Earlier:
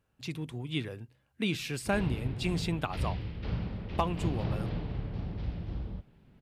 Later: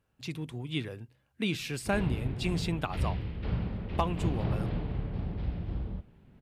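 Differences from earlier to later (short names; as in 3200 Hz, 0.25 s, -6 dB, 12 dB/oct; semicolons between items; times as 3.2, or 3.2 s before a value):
background: add air absorption 160 m; reverb: on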